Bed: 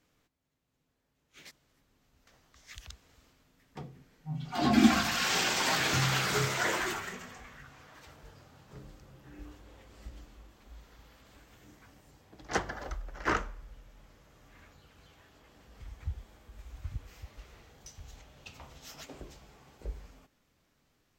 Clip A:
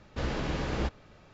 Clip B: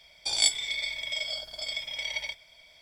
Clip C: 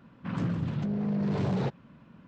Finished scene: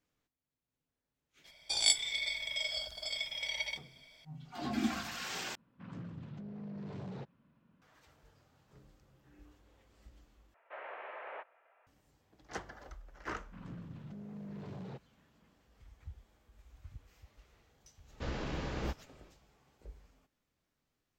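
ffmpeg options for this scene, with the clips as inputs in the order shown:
-filter_complex "[3:a]asplit=2[a][b];[1:a]asplit=2[c][d];[0:a]volume=-11.5dB[e];[c]highpass=f=490:t=q:w=0.5412,highpass=f=490:t=q:w=1.307,lowpass=f=2.4k:t=q:w=0.5176,lowpass=f=2.4k:t=q:w=0.7071,lowpass=f=2.4k:t=q:w=1.932,afreqshift=78[f];[e]asplit=3[g][h][i];[g]atrim=end=5.554[j];[a]atrim=end=2.27,asetpts=PTS-STARTPTS,volume=-15.5dB[k];[h]atrim=start=7.816:end=10.544[l];[f]atrim=end=1.33,asetpts=PTS-STARTPTS,volume=-7.5dB[m];[i]atrim=start=11.866[n];[2:a]atrim=end=2.81,asetpts=PTS-STARTPTS,volume=-4dB,afade=t=in:d=0.004:c=hsin,afade=t=out:st=2.806:d=0.004:c=hsin,adelay=1440[o];[b]atrim=end=2.27,asetpts=PTS-STARTPTS,volume=-17dB,afade=t=in:d=0.004:c=hsin,afade=t=out:st=2.266:d=0.004:c=hsin,adelay=13280[p];[d]atrim=end=1.33,asetpts=PTS-STARTPTS,volume=-6.5dB,afade=t=in:d=0.1,afade=t=out:st=1.23:d=0.1,adelay=18040[q];[j][k]acrossfade=d=0.004:c1=hsin:c2=hsin[r];[r][l]acrossfade=d=0.004:c1=hsin:c2=hsin[s];[s][m]acrossfade=d=0.004:c1=hsin:c2=hsin[t];[t][n]acrossfade=d=0.004:c1=hsin:c2=hsin[u];[u][o][p][q]amix=inputs=4:normalize=0"

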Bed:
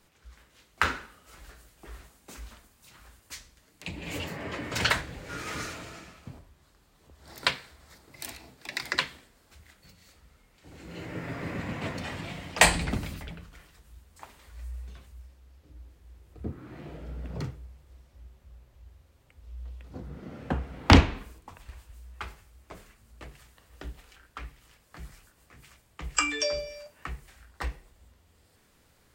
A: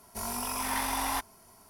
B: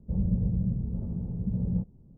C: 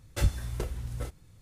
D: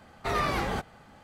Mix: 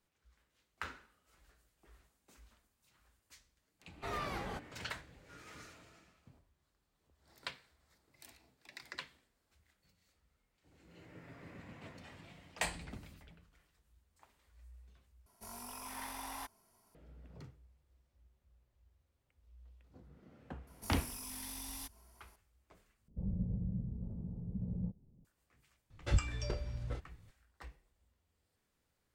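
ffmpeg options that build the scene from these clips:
-filter_complex "[1:a]asplit=2[a][b];[0:a]volume=-18dB[c];[b]acrossover=split=310|3000[d][e][f];[e]acompressor=threshold=-48dB:ratio=6:attack=3.2:release=140:knee=2.83:detection=peak[g];[d][g][f]amix=inputs=3:normalize=0[h];[3:a]lowpass=4.2k[i];[c]asplit=3[j][k][l];[j]atrim=end=15.264[m];[a]atrim=end=1.69,asetpts=PTS-STARTPTS,volume=-14dB[n];[k]atrim=start=16.946:end=23.084[o];[2:a]atrim=end=2.17,asetpts=PTS-STARTPTS,volume=-10.5dB[p];[l]atrim=start=25.246[q];[4:a]atrim=end=1.23,asetpts=PTS-STARTPTS,volume=-12dB,afade=t=in:d=0.1,afade=t=out:st=1.13:d=0.1,adelay=3780[r];[h]atrim=end=1.69,asetpts=PTS-STARTPTS,volume=-10dB,afade=t=in:d=0.004:c=hsin,afade=t=out:st=1.686:d=0.004:c=hsin,adelay=20670[s];[i]atrim=end=1.41,asetpts=PTS-STARTPTS,volume=-5dB,afade=t=in:d=0.004:c=hsin,afade=t=out:st=1.406:d=0.004:c=hsin,adelay=25900[t];[m][n]acrossfade=d=0.004:c1=hsin:c2=hsin[u];[u][o]acrossfade=d=0.004:c1=hsin:c2=hsin[v];[v][p]acrossfade=d=0.004:c1=hsin:c2=hsin[w];[w][q]acrossfade=d=0.004:c1=hsin:c2=hsin[x];[x][r][s][t]amix=inputs=4:normalize=0"

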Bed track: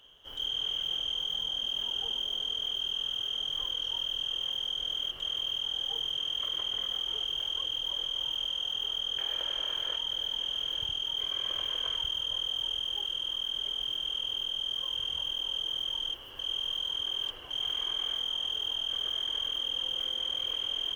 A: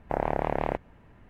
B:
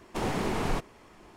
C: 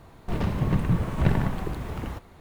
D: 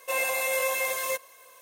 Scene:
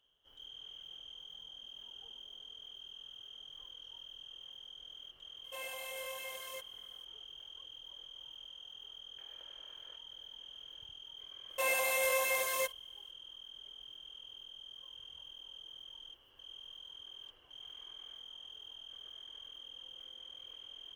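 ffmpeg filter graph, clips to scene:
-filter_complex "[4:a]asplit=2[a][b];[0:a]volume=-18dB[c];[b]agate=range=-16dB:threshold=-46dB:ratio=16:release=100:detection=peak[d];[a]atrim=end=1.61,asetpts=PTS-STARTPTS,volume=-17dB,afade=t=in:d=0.004:c=hsin,afade=t=out:st=1.606:d=0.004:c=hsin,adelay=5440[e];[d]atrim=end=1.61,asetpts=PTS-STARTPTS,volume=-4.5dB,afade=t=in:d=0.004:c=hsin,afade=t=out:st=1.606:d=0.004:c=hsin,adelay=11500[f];[c][e][f]amix=inputs=3:normalize=0"

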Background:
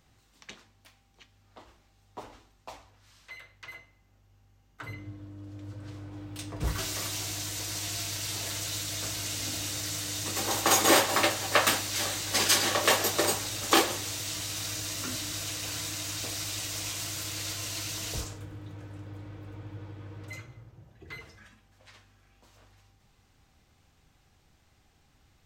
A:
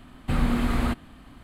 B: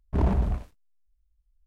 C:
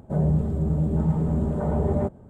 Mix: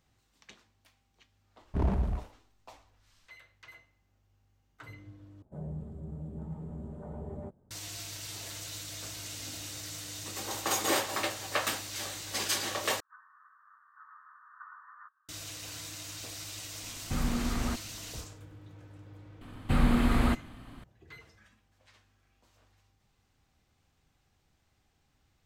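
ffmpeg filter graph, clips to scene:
-filter_complex "[3:a]asplit=2[a][b];[1:a]asplit=2[c][d];[0:a]volume=-7.5dB[e];[b]asuperpass=centerf=1400:order=12:qfactor=1.9[f];[e]asplit=3[g][h][i];[g]atrim=end=5.424[j];[a]atrim=end=2.29,asetpts=PTS-STARTPTS,volume=-18dB[k];[h]atrim=start=7.706:end=13.004[l];[f]atrim=end=2.29,asetpts=PTS-STARTPTS,volume=-1dB[m];[i]atrim=start=15.286[n];[2:a]atrim=end=1.66,asetpts=PTS-STARTPTS,volume=-5dB,afade=t=in:d=0.004:c=hsin,afade=t=out:st=1.656:d=0.004:c=hsin,adelay=1610[o];[c]atrim=end=1.43,asetpts=PTS-STARTPTS,volume=-7.5dB,afade=t=in:d=0.004:c=hsin,afade=t=out:st=1.426:d=0.004:c=hsin,adelay=16820[p];[d]atrim=end=1.43,asetpts=PTS-STARTPTS,volume=-1dB,afade=t=in:d=0.004:c=hsin,afade=t=out:st=1.426:d=0.004:c=hsin,adelay=19410[q];[j][k]acrossfade=d=0.004:c1=hsin:c2=hsin[r];[r][l]acrossfade=d=0.004:c1=hsin:c2=hsin[s];[s][m]acrossfade=d=0.004:c1=hsin:c2=hsin[t];[t][n]acrossfade=d=0.004:c1=hsin:c2=hsin[u];[u][o][p][q]amix=inputs=4:normalize=0"

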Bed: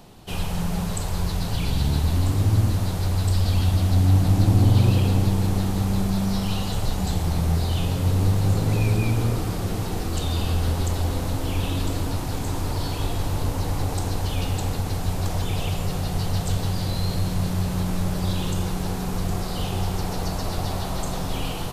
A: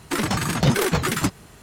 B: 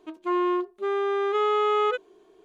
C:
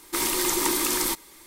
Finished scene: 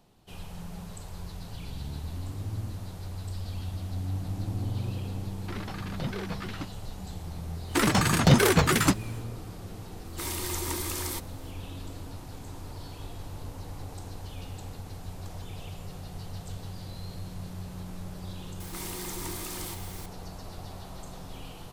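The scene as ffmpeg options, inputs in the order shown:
-filter_complex "[1:a]asplit=2[a][b];[3:a]asplit=2[c][d];[0:a]volume=-15dB[e];[a]lowpass=f=5k:w=0.5412,lowpass=f=5k:w=1.3066[f];[d]aeval=exprs='val(0)+0.5*0.0631*sgn(val(0))':c=same[g];[f]atrim=end=1.62,asetpts=PTS-STARTPTS,volume=-15.5dB,afade=t=in:d=0.004:c=hsin,afade=t=out:st=1.616:d=0.004:c=hsin,adelay=236817S[h];[b]atrim=end=1.62,asetpts=PTS-STARTPTS,afade=t=in:d=0.1,afade=t=out:st=1.52:d=0.1,adelay=7640[i];[c]atrim=end=1.46,asetpts=PTS-STARTPTS,volume=-9.5dB,afade=t=in:d=0.004:c=hsin,afade=t=out:st=1.456:d=0.004:c=hsin,adelay=10050[j];[g]atrim=end=1.46,asetpts=PTS-STARTPTS,volume=-17dB,afade=t=in:d=0.004:c=hsin,afade=t=out:st=1.456:d=0.004:c=hsin,adelay=820260S[k];[e][h][i][j][k]amix=inputs=5:normalize=0"

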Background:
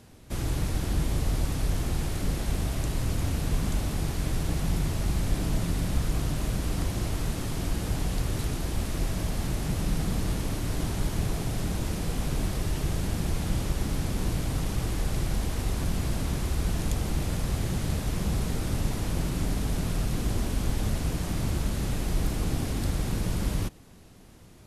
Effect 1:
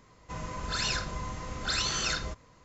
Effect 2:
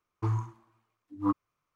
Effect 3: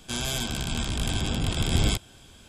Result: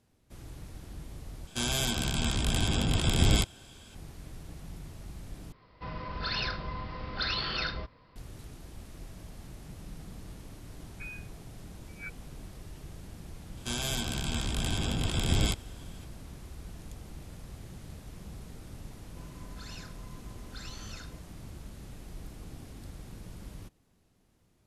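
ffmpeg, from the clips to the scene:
-filter_complex "[3:a]asplit=2[a][b];[1:a]asplit=2[c][d];[0:a]volume=-17dB[e];[c]aresample=11025,aresample=44100[f];[2:a]lowpass=f=2.2k:t=q:w=0.5098,lowpass=f=2.2k:t=q:w=0.6013,lowpass=f=2.2k:t=q:w=0.9,lowpass=f=2.2k:t=q:w=2.563,afreqshift=-2600[g];[e]asplit=3[h][i][j];[h]atrim=end=1.474[k];[a]atrim=end=2.48,asetpts=PTS-STARTPTS,volume=-0.5dB[l];[i]atrim=start=3.946:end=5.524[m];[f]atrim=end=2.64,asetpts=PTS-STARTPTS,volume=-1dB[n];[j]atrim=start=8.156[o];[g]atrim=end=1.75,asetpts=PTS-STARTPTS,volume=-16.5dB,afade=t=in:d=0.004:c=hsin,afade=t=out:st=1.746:d=0.004:c=hsin,adelay=10770[p];[b]atrim=end=2.48,asetpts=PTS-STARTPTS,volume=-3.5dB,afade=t=in:d=0.004:c=hsin,afade=t=out:st=2.476:d=0.004:c=hsin,adelay=13570[q];[d]atrim=end=2.64,asetpts=PTS-STARTPTS,volume=-17dB,afade=t=in:d=0.004:c=hsin,afade=t=out:st=2.636:d=0.004:c=hsin,adelay=18870[r];[k][l]acrossfade=d=0.004:c1=hsin:c2=hsin[s];[s][m]acrossfade=d=0.004:c1=hsin:c2=hsin[t];[t][n]acrossfade=d=0.004:c1=hsin:c2=hsin[u];[u][o]acrossfade=d=0.004:c1=hsin:c2=hsin[v];[v][p][q][r]amix=inputs=4:normalize=0"

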